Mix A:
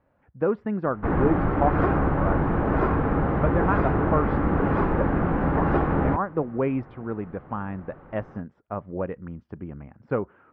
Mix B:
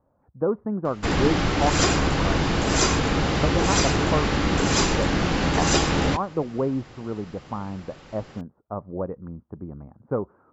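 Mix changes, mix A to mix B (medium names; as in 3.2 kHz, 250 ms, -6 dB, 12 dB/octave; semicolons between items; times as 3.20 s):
speech: add steep low-pass 1.2 kHz 36 dB/octave; master: remove low-pass 1.5 kHz 24 dB/octave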